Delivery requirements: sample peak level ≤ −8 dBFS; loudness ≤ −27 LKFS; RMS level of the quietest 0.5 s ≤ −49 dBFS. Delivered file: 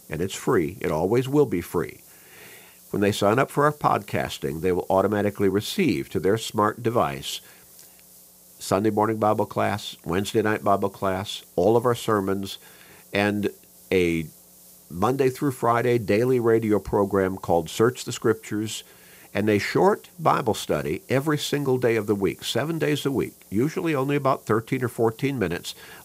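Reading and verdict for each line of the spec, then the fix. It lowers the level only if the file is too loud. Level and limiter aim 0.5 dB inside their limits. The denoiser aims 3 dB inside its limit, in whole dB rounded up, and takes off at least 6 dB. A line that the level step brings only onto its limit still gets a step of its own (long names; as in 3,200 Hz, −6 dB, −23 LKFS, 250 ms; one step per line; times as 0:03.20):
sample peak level −5.0 dBFS: out of spec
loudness −24.0 LKFS: out of spec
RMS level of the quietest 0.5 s −51 dBFS: in spec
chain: level −3.5 dB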